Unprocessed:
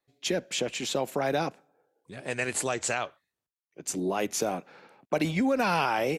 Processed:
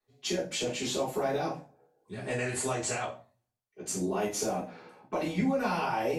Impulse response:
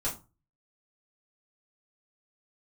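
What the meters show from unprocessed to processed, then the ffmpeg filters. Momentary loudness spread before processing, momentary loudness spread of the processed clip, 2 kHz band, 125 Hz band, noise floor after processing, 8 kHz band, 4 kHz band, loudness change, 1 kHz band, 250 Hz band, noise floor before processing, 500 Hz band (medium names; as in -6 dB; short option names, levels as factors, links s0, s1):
11 LU, 13 LU, -5.0 dB, -0.5 dB, -84 dBFS, -2.0 dB, -2.5 dB, -2.5 dB, -3.0 dB, -2.0 dB, under -85 dBFS, -2.0 dB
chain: -filter_complex "[0:a]acompressor=threshold=0.0355:ratio=6[s0];[1:a]atrim=start_sample=2205,asetrate=33957,aresample=44100[s1];[s0][s1]afir=irnorm=-1:irlink=0,volume=0.531"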